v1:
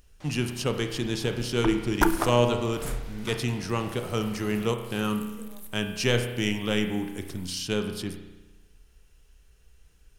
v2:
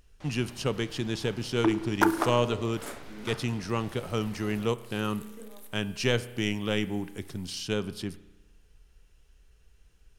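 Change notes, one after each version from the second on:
speech: send -10.5 dB; second sound: add steep high-pass 240 Hz; master: add treble shelf 6.9 kHz -7 dB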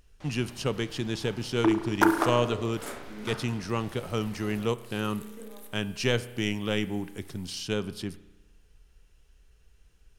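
second sound: send +7.5 dB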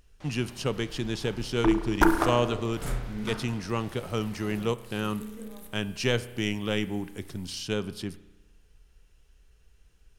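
second sound: remove steep high-pass 240 Hz

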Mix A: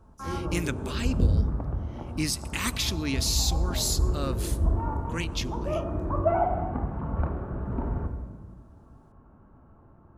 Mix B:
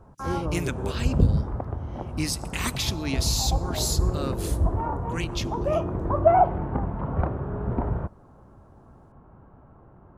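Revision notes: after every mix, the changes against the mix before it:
background +9.0 dB; reverb: off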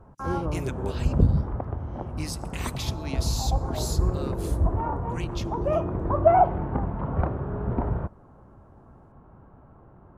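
speech -7.0 dB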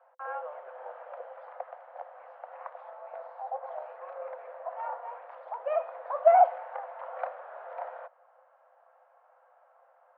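speech: add low-pass 1.1 kHz 24 dB/octave; master: add rippled Chebyshev high-pass 500 Hz, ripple 6 dB

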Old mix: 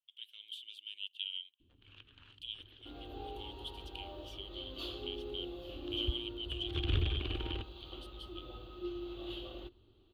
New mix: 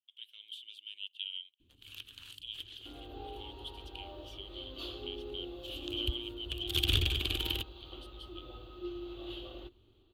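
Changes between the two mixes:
first sound: remove low-pass 1.7 kHz 12 dB/octave; second sound: add peaking EQ 190 Hz -7.5 dB 0.22 oct

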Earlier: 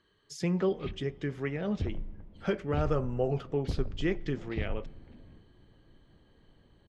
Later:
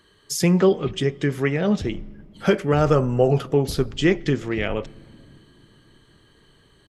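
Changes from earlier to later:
speech +11.5 dB; master: remove distance through air 88 m

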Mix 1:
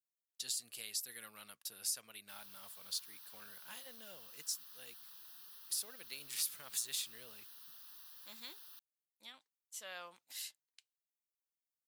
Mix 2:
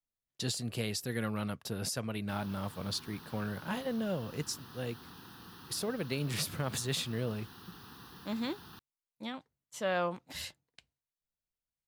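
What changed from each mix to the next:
master: remove differentiator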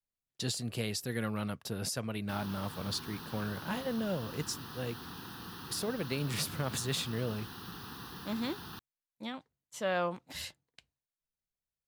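background +6.0 dB

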